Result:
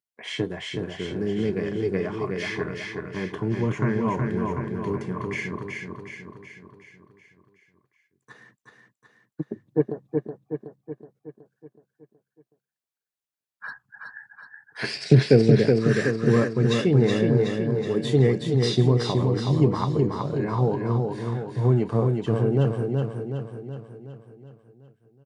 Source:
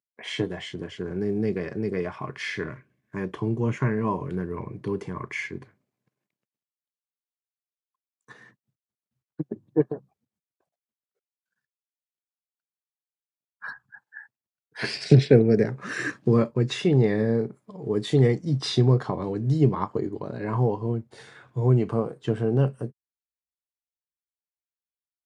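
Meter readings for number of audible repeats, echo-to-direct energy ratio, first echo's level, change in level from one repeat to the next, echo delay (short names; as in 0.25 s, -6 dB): 6, -2.5 dB, -4.0 dB, -5.5 dB, 0.372 s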